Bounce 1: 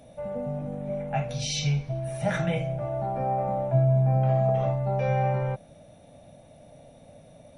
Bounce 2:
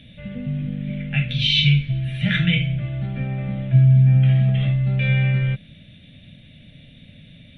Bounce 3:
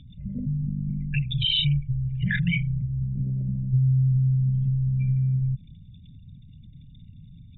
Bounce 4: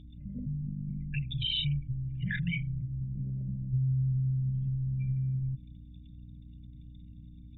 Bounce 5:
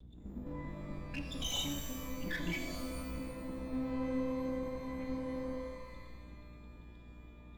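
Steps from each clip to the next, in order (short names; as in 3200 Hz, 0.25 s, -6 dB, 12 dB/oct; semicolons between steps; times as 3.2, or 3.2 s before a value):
EQ curve 210 Hz 0 dB, 870 Hz -28 dB, 1800 Hz +2 dB, 3400 Hz +11 dB, 5500 Hz -21 dB; gain +9 dB
formant sharpening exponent 3; compressor 2:1, threshold -24 dBFS, peak gain reduction 7.5 dB
hum 60 Hz, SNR 16 dB; gain -8 dB
minimum comb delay 4 ms; shimmer reverb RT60 1.3 s, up +12 st, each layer -2 dB, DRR 6 dB; gain -4.5 dB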